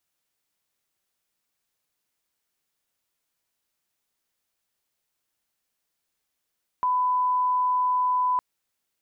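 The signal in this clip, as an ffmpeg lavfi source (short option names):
-f lavfi -i "sine=f=1000:d=1.56:r=44100,volume=-1.94dB"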